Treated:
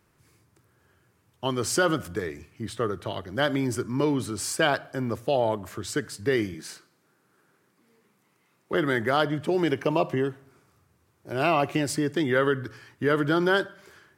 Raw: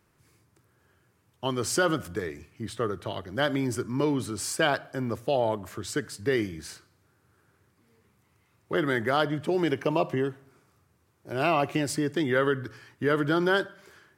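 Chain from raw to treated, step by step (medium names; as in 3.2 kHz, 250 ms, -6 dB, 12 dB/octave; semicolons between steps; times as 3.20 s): 6.54–8.74 s: high-pass 160 Hz 24 dB/octave; trim +1.5 dB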